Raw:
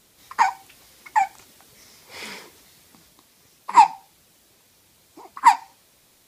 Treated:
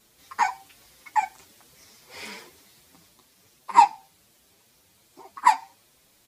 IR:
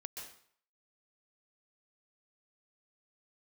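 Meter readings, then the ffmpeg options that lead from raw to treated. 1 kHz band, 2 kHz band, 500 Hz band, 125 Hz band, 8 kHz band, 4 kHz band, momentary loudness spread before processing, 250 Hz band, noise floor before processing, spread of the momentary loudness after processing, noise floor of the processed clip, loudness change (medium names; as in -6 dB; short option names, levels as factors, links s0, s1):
-3.0 dB, -3.0 dB, -2.5 dB, no reading, -3.0 dB, -3.0 dB, 20 LU, -2.5 dB, -59 dBFS, 21 LU, -62 dBFS, -3.0 dB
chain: -filter_complex "[0:a]asplit=2[s0][s1];[s1]adelay=6.8,afreqshift=2.6[s2];[s0][s2]amix=inputs=2:normalize=1"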